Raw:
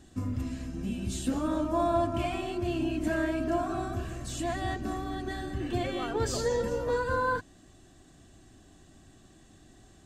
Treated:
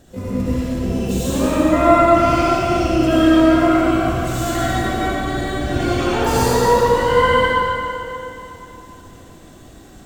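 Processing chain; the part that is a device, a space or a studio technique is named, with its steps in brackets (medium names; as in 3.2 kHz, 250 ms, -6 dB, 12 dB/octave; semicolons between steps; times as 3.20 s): shimmer-style reverb (harmony voices +12 st -5 dB; reverberation RT60 3.0 s, pre-delay 67 ms, DRR -8.5 dB); trim +3.5 dB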